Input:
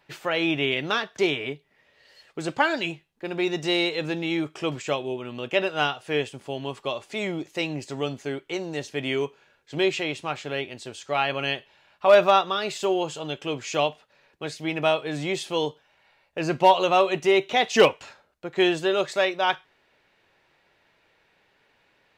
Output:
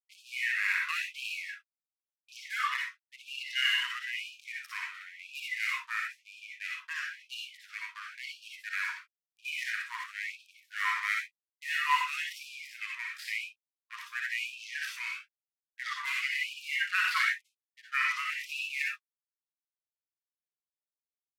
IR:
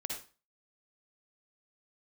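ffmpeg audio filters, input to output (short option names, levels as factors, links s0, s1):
-filter_complex "[0:a]equalizer=f=340:t=o:w=0.85:g=8.5,atempo=1.4,aeval=exprs='sgn(val(0))*max(abs(val(0))-0.0188,0)':c=same,asetrate=32667,aresample=44100[s0];[1:a]atrim=start_sample=2205,atrim=end_sample=6174[s1];[s0][s1]afir=irnorm=-1:irlink=0,afftfilt=real='re*gte(b*sr/1024,920*pow(2400/920,0.5+0.5*sin(2*PI*0.98*pts/sr)))':imag='im*gte(b*sr/1024,920*pow(2400/920,0.5+0.5*sin(2*PI*0.98*pts/sr)))':win_size=1024:overlap=0.75"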